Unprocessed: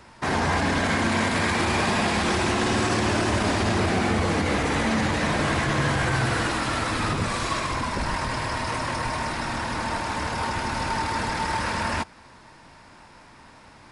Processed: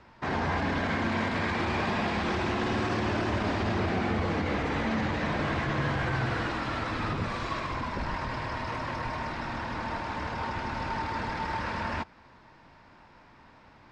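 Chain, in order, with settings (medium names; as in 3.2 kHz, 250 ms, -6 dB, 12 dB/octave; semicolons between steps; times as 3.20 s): distance through air 160 m; trim -5 dB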